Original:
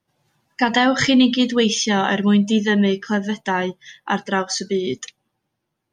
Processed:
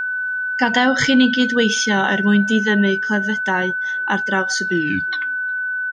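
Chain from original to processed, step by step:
turntable brake at the end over 1.30 s
far-end echo of a speakerphone 360 ms, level −30 dB
steady tone 1,500 Hz −20 dBFS

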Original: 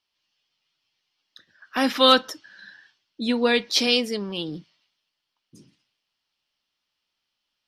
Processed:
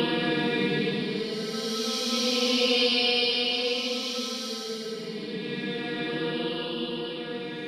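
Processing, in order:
feedback delay that plays each chunk backwards 488 ms, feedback 58%, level −5 dB
extreme stretch with random phases 7.3×, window 0.25 s, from 0:04.44
level +1 dB

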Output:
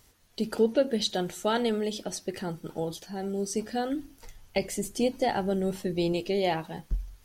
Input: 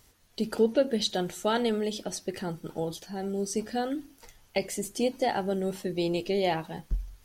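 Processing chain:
0:03.89–0:06.13: low-shelf EQ 120 Hz +9.5 dB

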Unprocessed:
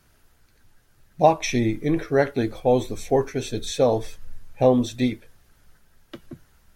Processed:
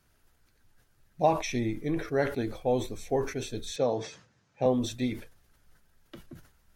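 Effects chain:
0:03.76–0:04.66: Chebyshev band-pass filter 130–6,500 Hz, order 3
level that may fall only so fast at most 110 dB per second
level −8 dB

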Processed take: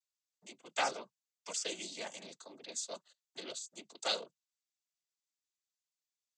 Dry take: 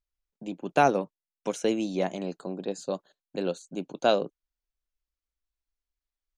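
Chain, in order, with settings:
first difference
cochlear-implant simulation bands 16
level +6 dB

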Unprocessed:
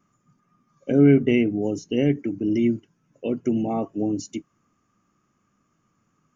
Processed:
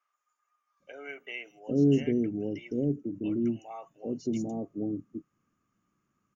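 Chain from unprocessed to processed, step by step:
three-band delay without the direct sound mids, highs, lows 160/800 ms, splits 690/5,800 Hz
level −7.5 dB

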